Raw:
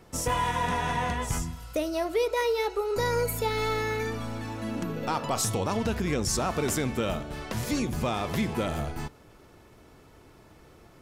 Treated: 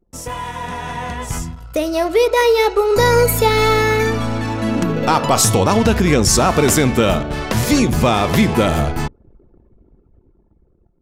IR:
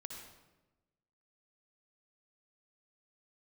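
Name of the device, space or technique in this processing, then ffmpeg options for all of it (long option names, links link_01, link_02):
voice memo with heavy noise removal: -af "anlmdn=0.0398,dynaudnorm=framelen=520:gausssize=7:maxgain=15.5dB"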